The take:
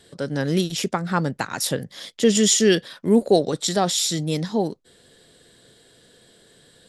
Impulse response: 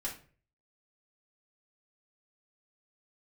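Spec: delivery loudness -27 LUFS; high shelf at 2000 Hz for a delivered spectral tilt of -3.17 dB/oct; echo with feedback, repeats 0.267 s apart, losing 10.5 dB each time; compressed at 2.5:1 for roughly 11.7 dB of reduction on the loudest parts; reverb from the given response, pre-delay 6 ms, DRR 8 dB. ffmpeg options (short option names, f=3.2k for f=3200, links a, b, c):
-filter_complex "[0:a]highshelf=f=2k:g=6,acompressor=threshold=-29dB:ratio=2.5,aecho=1:1:267|534|801:0.299|0.0896|0.0269,asplit=2[a][b];[1:a]atrim=start_sample=2205,adelay=6[c];[b][c]afir=irnorm=-1:irlink=0,volume=-9.5dB[d];[a][d]amix=inputs=2:normalize=0,volume=0.5dB"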